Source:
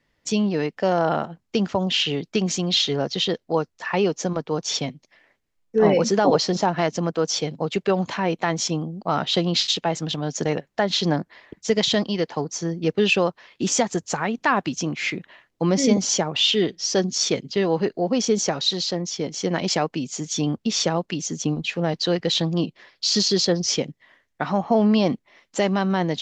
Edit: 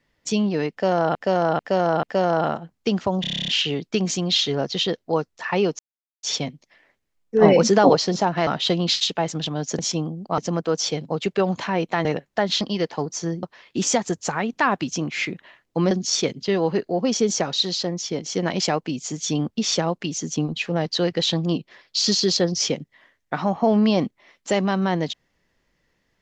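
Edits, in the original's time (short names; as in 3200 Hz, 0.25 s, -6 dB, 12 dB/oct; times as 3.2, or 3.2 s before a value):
0.71–1.15 loop, 4 plays
1.89 stutter 0.03 s, 10 plays
4.2–4.64 mute
5.83–6.34 gain +3.5 dB
6.88–8.55 swap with 9.14–10.46
11.02–12 cut
12.82–13.28 cut
15.76–16.99 cut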